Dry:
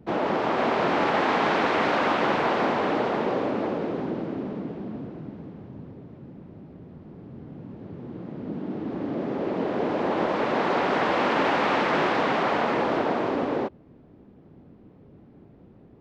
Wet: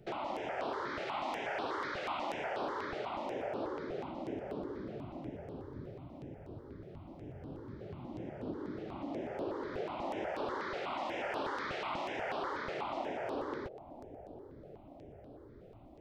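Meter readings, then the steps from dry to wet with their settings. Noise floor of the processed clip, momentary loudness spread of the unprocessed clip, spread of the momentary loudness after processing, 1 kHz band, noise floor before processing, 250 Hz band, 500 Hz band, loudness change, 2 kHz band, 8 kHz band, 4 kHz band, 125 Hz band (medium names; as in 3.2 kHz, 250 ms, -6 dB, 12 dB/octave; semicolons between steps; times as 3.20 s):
-54 dBFS, 20 LU, 13 LU, -13.5 dB, -52 dBFS, -15.0 dB, -13.0 dB, -15.0 dB, -14.0 dB, no reading, -12.5 dB, -12.0 dB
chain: peaking EQ 190 Hz -12.5 dB 1.1 oct; band-stop 480 Hz, Q 14; compression 3:1, threshold -39 dBFS, peak gain reduction 13.5 dB; bucket-brigade echo 388 ms, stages 2048, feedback 82%, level -14 dB; stepped phaser 8.2 Hz 270–6900 Hz; trim +2.5 dB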